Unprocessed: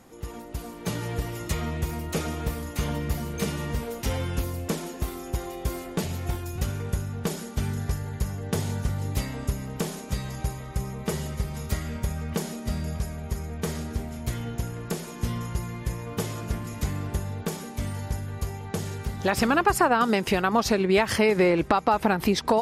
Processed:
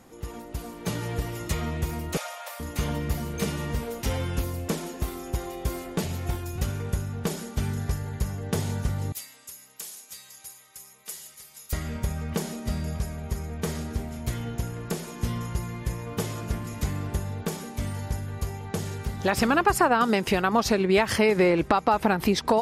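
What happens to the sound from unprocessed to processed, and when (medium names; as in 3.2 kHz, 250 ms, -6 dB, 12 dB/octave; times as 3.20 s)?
2.17–2.60 s: brick-wall FIR high-pass 500 Hz
9.12–11.73 s: differentiator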